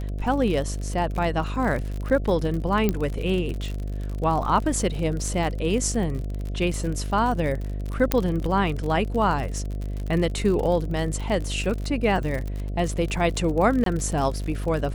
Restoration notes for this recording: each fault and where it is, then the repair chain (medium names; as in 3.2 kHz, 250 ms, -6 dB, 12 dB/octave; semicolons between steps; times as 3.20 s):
buzz 50 Hz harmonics 14 -29 dBFS
crackle 60 per s -29 dBFS
2.89 s: pop -9 dBFS
8.12 s: pop -4 dBFS
13.84–13.86 s: dropout 23 ms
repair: de-click; de-hum 50 Hz, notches 14; interpolate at 13.84 s, 23 ms